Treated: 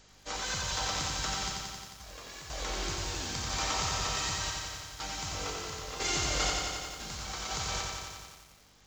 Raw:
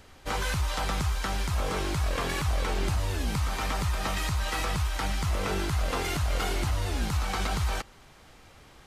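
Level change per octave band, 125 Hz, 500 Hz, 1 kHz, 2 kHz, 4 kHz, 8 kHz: -12.0, -6.5, -4.0, -3.5, +2.0, +4.5 dB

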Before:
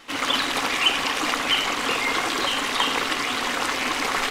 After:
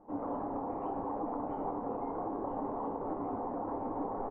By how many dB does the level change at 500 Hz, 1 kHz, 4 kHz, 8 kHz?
-6.0 dB, -10.5 dB, under -40 dB, under -40 dB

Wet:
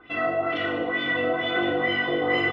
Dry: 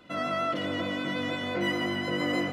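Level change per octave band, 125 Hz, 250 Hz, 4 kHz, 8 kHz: -1.0 dB, +1.0 dB, +3.5 dB, under -15 dB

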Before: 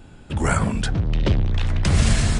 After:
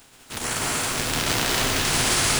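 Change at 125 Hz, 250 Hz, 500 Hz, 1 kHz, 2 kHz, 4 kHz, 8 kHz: -12.0, -6.0, 0.0, +2.5, +5.0, +8.5, +9.5 dB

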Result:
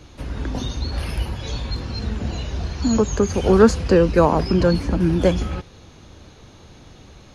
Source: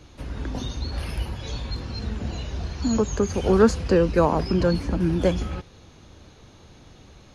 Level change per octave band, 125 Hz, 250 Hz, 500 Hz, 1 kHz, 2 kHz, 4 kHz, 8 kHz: +4.0, +4.0, +4.0, +4.0, +4.0, +4.0, +4.0 dB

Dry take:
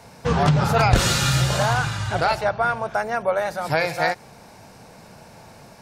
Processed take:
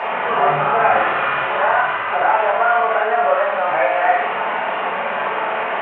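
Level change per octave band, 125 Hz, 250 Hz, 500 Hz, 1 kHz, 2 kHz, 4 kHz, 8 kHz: under -15 dB, -7.0 dB, +6.0 dB, +8.5 dB, +7.0 dB, -4.5 dB, under -40 dB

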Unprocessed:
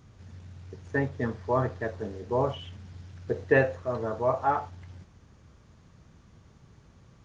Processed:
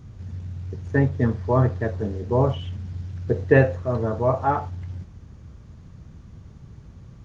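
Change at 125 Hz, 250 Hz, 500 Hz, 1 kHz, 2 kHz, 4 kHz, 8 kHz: +12.0 dB, +8.5 dB, +5.0 dB, +3.0 dB, +2.5 dB, +2.0 dB, n/a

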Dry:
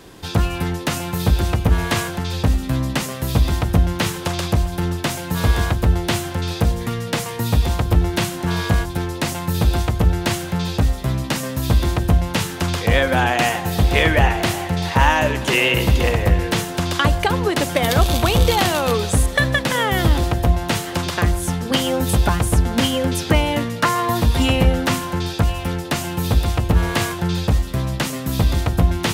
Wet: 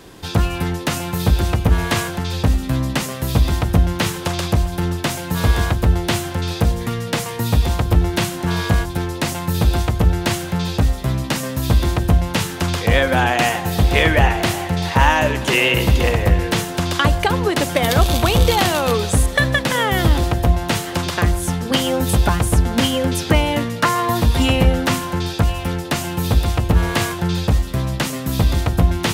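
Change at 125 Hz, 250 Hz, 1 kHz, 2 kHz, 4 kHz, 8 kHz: +1.0, +1.0, +1.0, +1.0, +1.0, +1.0 dB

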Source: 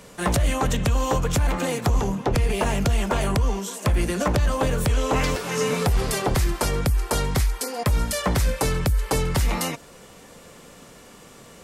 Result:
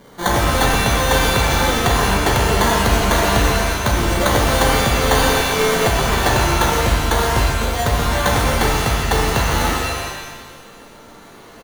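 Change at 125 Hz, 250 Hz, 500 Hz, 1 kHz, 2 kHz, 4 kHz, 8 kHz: +4.0, +5.0, +7.0, +10.5, +12.0, +11.5, +7.5 dB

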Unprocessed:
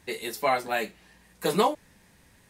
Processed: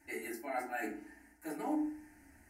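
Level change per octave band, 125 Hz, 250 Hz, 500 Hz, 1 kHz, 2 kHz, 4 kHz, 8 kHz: -21.5, -3.0, -15.0, -13.5, -10.0, -24.5, -12.5 dB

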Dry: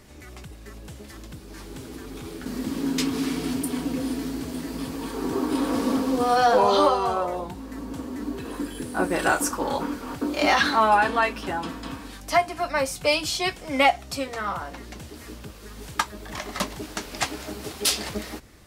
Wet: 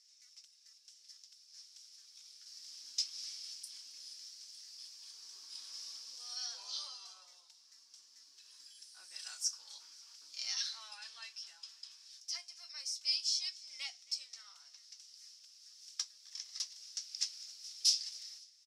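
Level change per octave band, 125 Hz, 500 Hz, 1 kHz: under -40 dB, under -40 dB, under -40 dB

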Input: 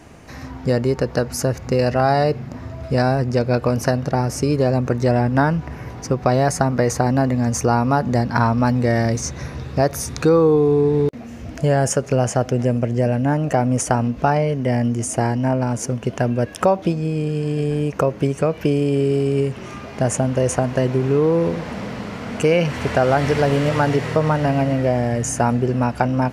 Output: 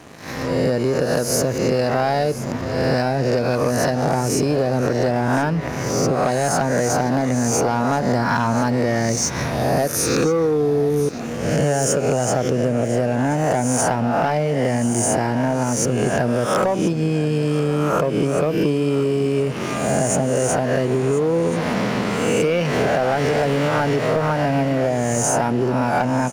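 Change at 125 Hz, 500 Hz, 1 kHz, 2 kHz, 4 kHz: -2.5, 0.0, +0.5, +2.0, +3.5 dB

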